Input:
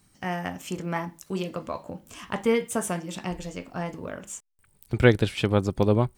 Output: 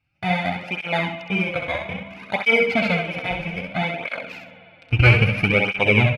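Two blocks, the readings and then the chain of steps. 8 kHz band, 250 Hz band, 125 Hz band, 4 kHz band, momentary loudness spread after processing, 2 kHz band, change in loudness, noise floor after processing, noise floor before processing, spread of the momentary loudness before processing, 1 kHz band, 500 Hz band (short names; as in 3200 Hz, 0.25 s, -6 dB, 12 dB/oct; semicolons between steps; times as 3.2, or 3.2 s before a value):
under -10 dB, +2.0 dB, +7.0 dB, +9.5 dB, 13 LU, +14.0 dB, +7.0 dB, -51 dBFS, -63 dBFS, 16 LU, +6.0 dB, +2.0 dB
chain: FFT order left unsorted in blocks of 16 samples; comb 1.4 ms, depth 55%; sample leveller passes 3; synth low-pass 2500 Hz, resonance Q 12; on a send: feedback echo 66 ms, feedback 28%, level -5 dB; on the sum: spring tank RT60 2.6 s, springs 51 ms, chirp 60 ms, DRR 10 dB; tape flanging out of phase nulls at 0.61 Hz, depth 5.3 ms; gain -4 dB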